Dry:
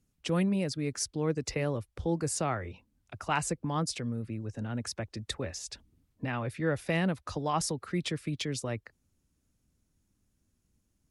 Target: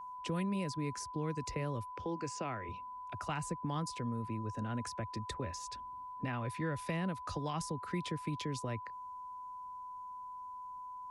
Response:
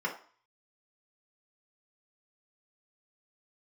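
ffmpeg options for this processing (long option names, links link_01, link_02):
-filter_complex "[0:a]asettb=1/sr,asplit=3[link_01][link_02][link_03];[link_01]atrim=end=1.924[link_04];[link_02]atrim=start=1.92:end=2.69,asetpts=PTS-STARTPTS,afade=type=in:duration=0.004:curve=qsin,afade=type=out:start_time=0.766:duration=0.004:curve=qsin,highpass=150,equalizer=frequency=160:width_type=q:width=4:gain=-9,equalizer=frequency=2600:width_type=q:width=4:gain=5,equalizer=frequency=3900:width_type=q:width=4:gain=-8,lowpass=frequency=6200:width=0.5412,lowpass=frequency=6200:width=1.3066[link_05];[link_03]atrim=start=2.686[link_06];[link_04][link_05]acrossfade=duration=0.004:curve1=hsin:curve2=qsin[link_07];[link_07][link_06]acrossfade=duration=0.004:curve1=qsin:curve2=hsin,acrossover=split=240|1600[link_08][link_09][link_10];[link_08]acompressor=threshold=-36dB:ratio=4[link_11];[link_09]acompressor=threshold=-39dB:ratio=4[link_12];[link_10]acompressor=threshold=-44dB:ratio=4[link_13];[link_11][link_12][link_13]amix=inputs=3:normalize=0,aeval=exprs='val(0)+0.00794*sin(2*PI*1000*n/s)':channel_layout=same,volume=-1.5dB"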